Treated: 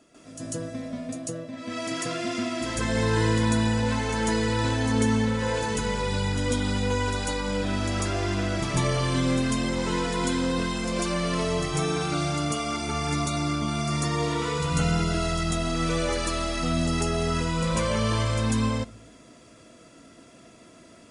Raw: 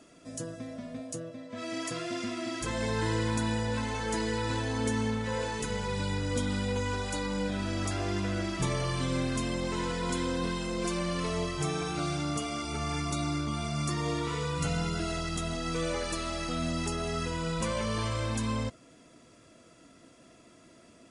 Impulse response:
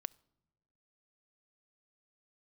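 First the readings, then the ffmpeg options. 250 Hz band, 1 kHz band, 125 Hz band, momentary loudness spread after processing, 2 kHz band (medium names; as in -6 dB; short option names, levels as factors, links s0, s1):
+6.0 dB, +5.5 dB, +6.0 dB, 7 LU, +5.5 dB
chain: -filter_complex "[0:a]asplit=2[s0][s1];[1:a]atrim=start_sample=2205,adelay=145[s2];[s1][s2]afir=irnorm=-1:irlink=0,volume=3.55[s3];[s0][s3]amix=inputs=2:normalize=0,volume=0.708"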